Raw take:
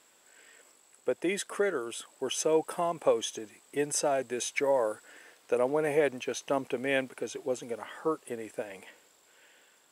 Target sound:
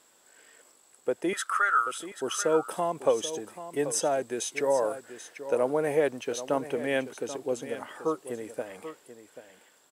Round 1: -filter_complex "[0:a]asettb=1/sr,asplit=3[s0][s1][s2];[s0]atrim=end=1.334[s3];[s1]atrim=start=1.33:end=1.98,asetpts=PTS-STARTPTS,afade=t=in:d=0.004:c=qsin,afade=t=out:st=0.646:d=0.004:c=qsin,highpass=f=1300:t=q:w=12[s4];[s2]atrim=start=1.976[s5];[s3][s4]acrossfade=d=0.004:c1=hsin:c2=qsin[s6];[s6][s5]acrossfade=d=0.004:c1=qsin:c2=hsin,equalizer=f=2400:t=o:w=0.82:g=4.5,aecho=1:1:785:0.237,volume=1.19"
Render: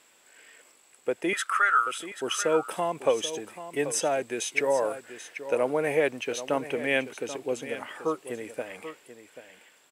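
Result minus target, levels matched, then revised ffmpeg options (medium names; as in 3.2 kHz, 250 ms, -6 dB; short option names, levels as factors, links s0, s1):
2 kHz band +3.0 dB
-filter_complex "[0:a]asettb=1/sr,asplit=3[s0][s1][s2];[s0]atrim=end=1.334[s3];[s1]atrim=start=1.33:end=1.98,asetpts=PTS-STARTPTS,afade=t=in:d=0.004:c=qsin,afade=t=out:st=0.646:d=0.004:c=qsin,highpass=f=1300:t=q:w=12[s4];[s2]atrim=start=1.976[s5];[s3][s4]acrossfade=d=0.004:c1=hsin:c2=qsin[s6];[s6][s5]acrossfade=d=0.004:c1=qsin:c2=hsin,equalizer=f=2400:t=o:w=0.82:g=-4.5,aecho=1:1:785:0.237,volume=1.19"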